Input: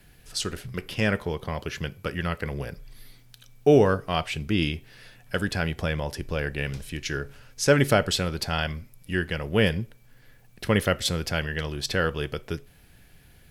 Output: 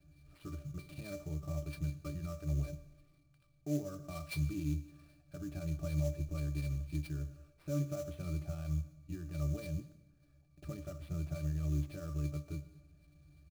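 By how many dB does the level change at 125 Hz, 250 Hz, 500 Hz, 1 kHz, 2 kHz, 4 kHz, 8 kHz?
-7.5 dB, -12.5 dB, -20.5 dB, -24.5 dB, -25.5 dB, -26.0 dB, -18.5 dB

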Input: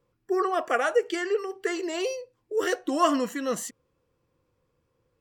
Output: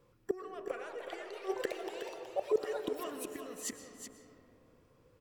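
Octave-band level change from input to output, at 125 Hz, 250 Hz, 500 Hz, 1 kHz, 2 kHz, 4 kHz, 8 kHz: no reading, -14.5 dB, -9.5 dB, -16.0 dB, -15.5 dB, -12.0 dB, -7.5 dB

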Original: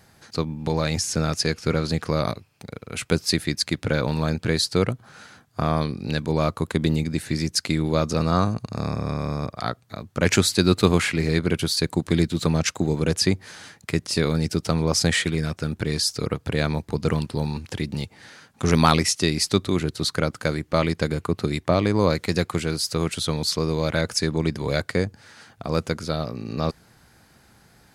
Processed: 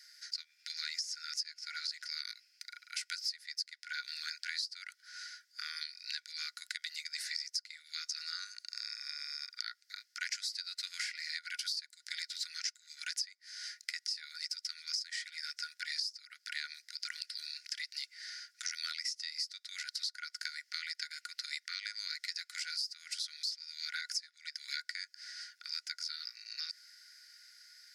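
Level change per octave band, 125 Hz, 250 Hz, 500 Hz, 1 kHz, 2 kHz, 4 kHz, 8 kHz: under -40 dB, under -40 dB, under -40 dB, -25.0 dB, -11.5 dB, -8.5 dB, -13.5 dB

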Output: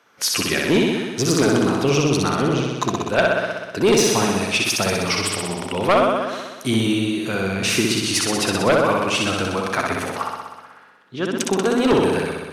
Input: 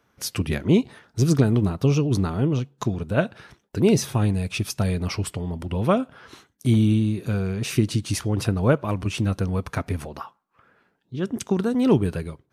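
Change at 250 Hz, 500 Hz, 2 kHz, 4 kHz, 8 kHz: +1.5 dB, +6.5 dB, +12.0 dB, +12.5 dB, +11.0 dB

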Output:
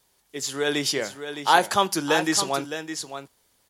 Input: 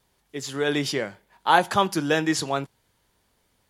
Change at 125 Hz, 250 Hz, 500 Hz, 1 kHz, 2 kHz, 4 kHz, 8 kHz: -5.0 dB, -1.5 dB, 0.0 dB, +0.5 dB, +0.5 dB, +3.5 dB, +7.0 dB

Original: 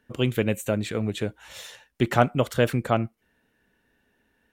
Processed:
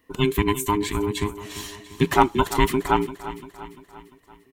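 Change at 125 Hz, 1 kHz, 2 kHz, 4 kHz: -1.5 dB, +7.0 dB, +2.5 dB, +4.5 dB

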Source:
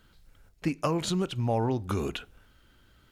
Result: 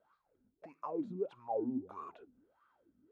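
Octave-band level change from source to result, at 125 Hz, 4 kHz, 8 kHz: -24.5 dB, under -30 dB, under -35 dB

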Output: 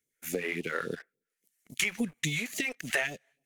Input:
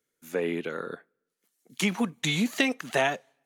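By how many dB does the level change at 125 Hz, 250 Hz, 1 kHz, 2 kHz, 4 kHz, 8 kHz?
-4.5 dB, -7.5 dB, -9.5 dB, -1.0 dB, -4.5 dB, +1.0 dB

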